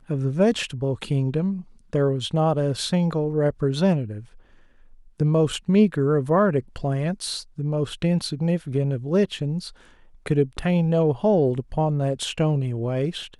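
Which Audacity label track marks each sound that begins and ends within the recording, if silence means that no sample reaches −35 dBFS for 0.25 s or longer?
1.930000	4.210000	sound
5.200000	9.700000	sound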